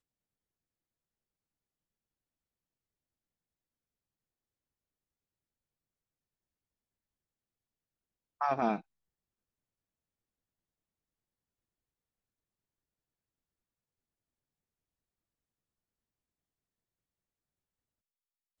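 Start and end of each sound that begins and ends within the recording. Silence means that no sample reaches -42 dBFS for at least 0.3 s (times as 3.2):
8.41–8.8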